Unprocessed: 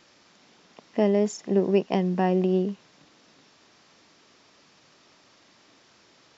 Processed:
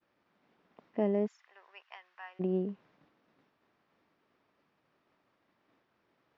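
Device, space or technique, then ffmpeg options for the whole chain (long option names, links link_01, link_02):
hearing-loss simulation: -filter_complex "[0:a]lowpass=2000,agate=range=-33dB:threshold=-55dB:ratio=3:detection=peak,asplit=3[link_01][link_02][link_03];[link_01]afade=type=out:start_time=1.26:duration=0.02[link_04];[link_02]highpass=frequency=1200:width=0.5412,highpass=frequency=1200:width=1.3066,afade=type=in:start_time=1.26:duration=0.02,afade=type=out:start_time=2.39:duration=0.02[link_05];[link_03]afade=type=in:start_time=2.39:duration=0.02[link_06];[link_04][link_05][link_06]amix=inputs=3:normalize=0,volume=-8dB"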